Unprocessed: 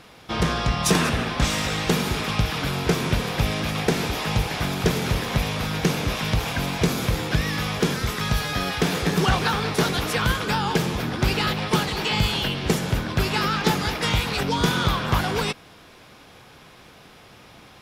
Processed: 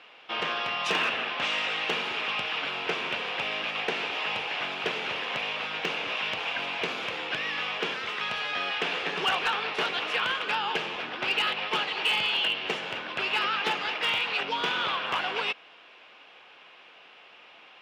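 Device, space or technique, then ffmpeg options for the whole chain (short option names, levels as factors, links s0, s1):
megaphone: -af "highpass=530,lowpass=3000,equalizer=f=2800:t=o:w=0.52:g=11,asoftclip=type=hard:threshold=0.188,volume=0.631"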